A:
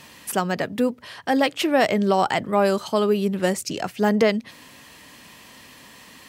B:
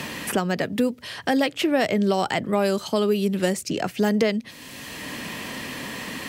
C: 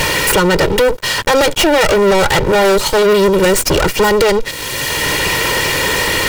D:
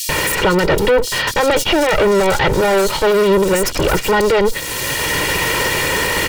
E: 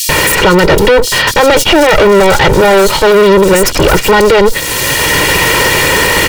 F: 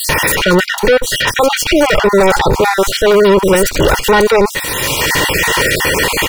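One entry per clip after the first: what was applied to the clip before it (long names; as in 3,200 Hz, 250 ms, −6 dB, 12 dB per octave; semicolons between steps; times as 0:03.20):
parametric band 1,000 Hz −5.5 dB 1.3 octaves; multiband upward and downward compressor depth 70%
lower of the sound and its delayed copy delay 2.1 ms; leveller curve on the samples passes 5; level +3 dB
multiband delay without the direct sound highs, lows 90 ms, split 4,200 Hz; brickwall limiter −9 dBFS, peak gain reduction 7 dB
hard clipping −12.5 dBFS, distortion −19 dB; level +8.5 dB
time-frequency cells dropped at random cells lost 30%; level −2.5 dB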